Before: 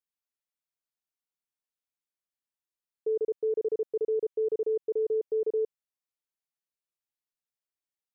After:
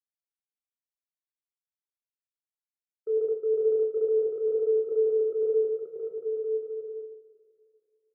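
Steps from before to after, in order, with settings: gate -31 dBFS, range -35 dB; on a send: bouncing-ball echo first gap 0.53 s, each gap 0.7×, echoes 5; on the sum: two-slope reverb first 0.49 s, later 2.9 s, from -17 dB, DRR 0.5 dB; gain -3 dB

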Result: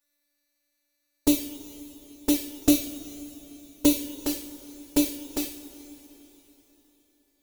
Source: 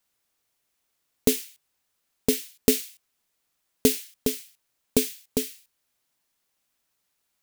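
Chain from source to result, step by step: robotiser 291 Hz; envelope flanger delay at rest 10.9 ms, full sweep at -22 dBFS; two-slope reverb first 0.31 s, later 3.9 s, from -18 dB, DRR 2 dB; gain +1.5 dB

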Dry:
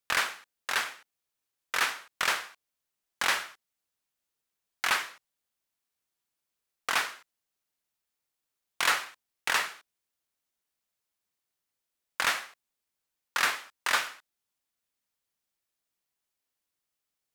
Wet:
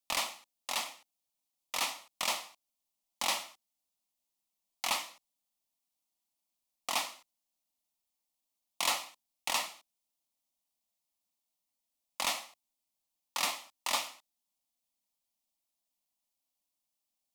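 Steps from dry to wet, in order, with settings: fixed phaser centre 420 Hz, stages 6

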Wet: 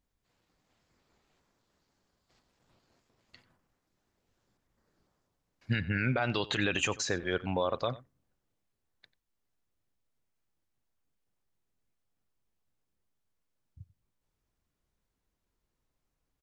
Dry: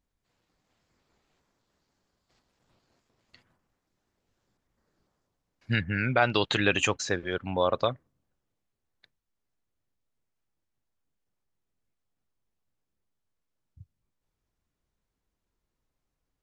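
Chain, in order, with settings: limiter -18 dBFS, peak gain reduction 10 dB; echo 92 ms -19 dB

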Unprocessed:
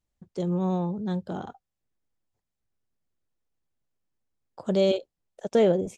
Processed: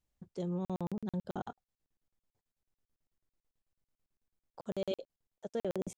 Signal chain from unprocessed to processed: reverse; compressor 5:1, threshold -31 dBFS, peak gain reduction 13 dB; reverse; crackling interface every 0.11 s, samples 2048, zero, from 0.65; gain -2 dB

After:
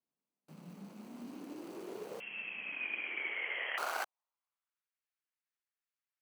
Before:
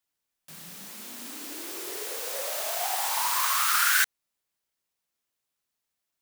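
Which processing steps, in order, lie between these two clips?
median filter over 25 samples; 2.2–3.78 inverted band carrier 3200 Hz; high-pass sweep 190 Hz -> 1700 Hz, 2.55–4.93; gain -4 dB

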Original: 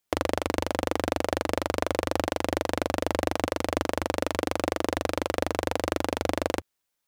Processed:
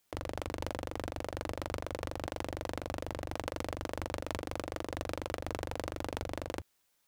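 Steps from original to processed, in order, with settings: negative-ratio compressor -36 dBFS, ratio -1; gain -2.5 dB

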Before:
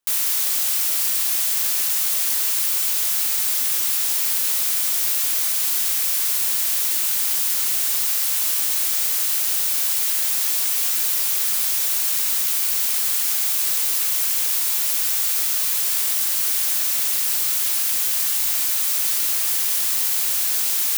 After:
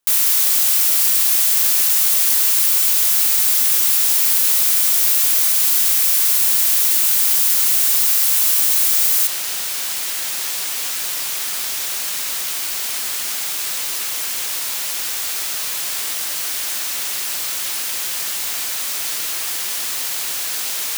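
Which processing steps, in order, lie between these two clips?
high shelf 7700 Hz +2 dB, from 9.27 s -9 dB; gain +4 dB

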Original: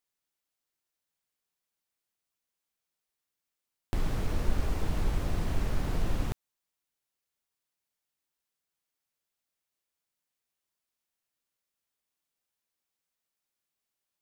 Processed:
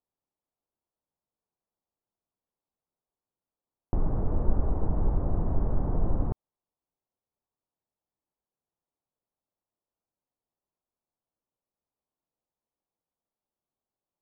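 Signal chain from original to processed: LPF 1000 Hz 24 dB/oct; gain +3.5 dB

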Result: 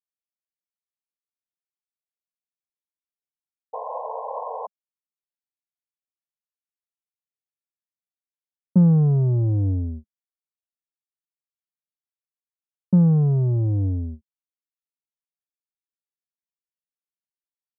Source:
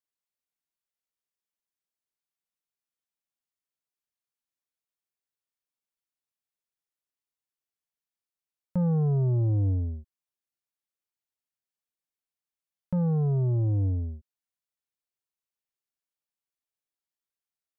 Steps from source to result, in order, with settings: gate with hold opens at -25 dBFS; low-pass opened by the level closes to 370 Hz, open at -27 dBFS; painted sound noise, 3.73–4.67, 440–1100 Hz -33 dBFS; bell 200 Hz +13 dB 0.71 oct; Doppler distortion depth 0.11 ms; gain +1.5 dB

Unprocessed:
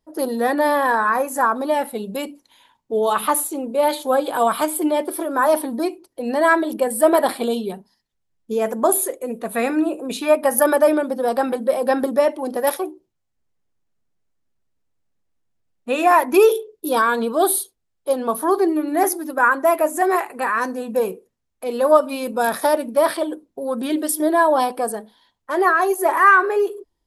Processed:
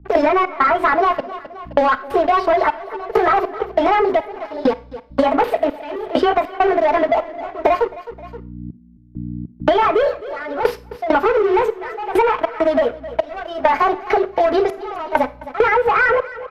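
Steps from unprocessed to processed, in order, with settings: delay-line pitch shifter +4 st; HPF 280 Hz 24 dB/oct; granular stretch 0.61×, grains 69 ms; comb 4.6 ms, depth 56%; sample leveller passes 5; compressor, threshold -7 dBFS, peak gain reduction 4.5 dB; hum 60 Hz, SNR 33 dB; LPF 2100 Hz 12 dB/oct; step gate ".xx.xxxx.." 100 bpm -24 dB; feedback echo 0.262 s, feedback 25%, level -22 dB; Schroeder reverb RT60 0.31 s, combs from 31 ms, DRR 16.5 dB; three-band squash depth 100%; gain -5 dB

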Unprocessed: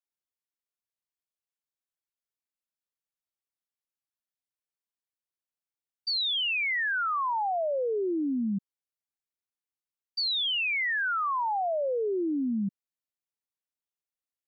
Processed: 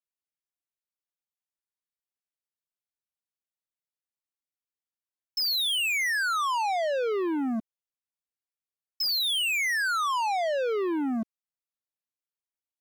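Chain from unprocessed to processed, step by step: dynamic EQ 130 Hz, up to -7 dB, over -47 dBFS, Q 0.87; varispeed +13%; sample leveller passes 3

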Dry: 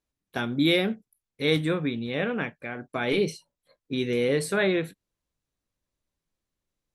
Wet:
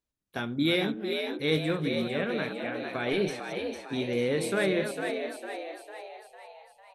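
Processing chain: reverse delay 0.189 s, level -9 dB; frequency-shifting echo 0.452 s, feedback 52%, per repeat +75 Hz, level -6 dB; gain -4 dB

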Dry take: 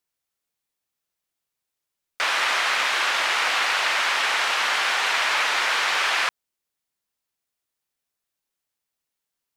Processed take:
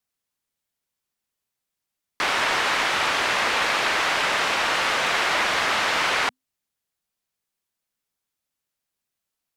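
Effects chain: frequency shift -260 Hz; wow and flutter 17 cents

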